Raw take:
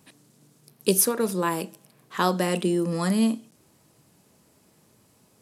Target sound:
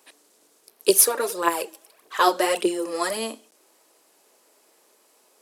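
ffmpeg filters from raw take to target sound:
ffmpeg -i in.wav -filter_complex "[0:a]highpass=frequency=380:width=0.5412,highpass=frequency=380:width=1.3066,asettb=1/sr,asplit=3[link_01][link_02][link_03];[link_01]atrim=end=0.894[link_04];[link_02]atrim=start=0.89:end=3.17,asetpts=PTS-STARTPTS,afade=type=in:duration=0.004:curve=qsin,afade=type=out:start_time=2.276:duration=0.004:curve=qsin,aphaser=in_gain=1:out_gain=1:delay=3.8:decay=0.57:speed=1.7:type=triangular[link_05];[link_03]atrim=start=3.166[link_06];[link_04][link_05]acrossfade=duration=0.004:curve1=hsin:curve2=qsin[link_07];[link_07][link_06]acrossfade=duration=0.004:curve1=qsin:curve2=hsin,volume=3dB" out.wav

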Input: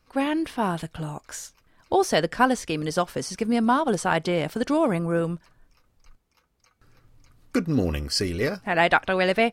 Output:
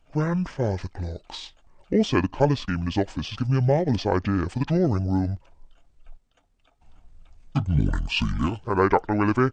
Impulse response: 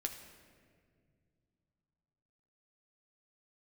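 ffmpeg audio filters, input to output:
-af "lowshelf=frequency=79:gain=10.5,asetrate=24750,aresample=44100,atempo=1.7818"

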